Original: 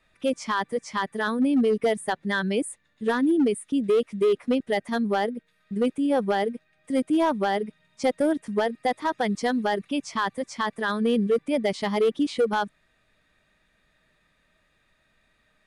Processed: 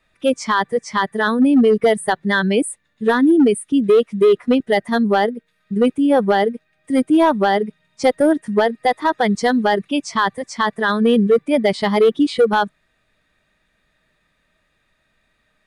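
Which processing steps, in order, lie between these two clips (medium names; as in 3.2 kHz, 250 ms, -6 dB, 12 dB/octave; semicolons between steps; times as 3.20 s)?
spectral noise reduction 7 dB; trim +8.5 dB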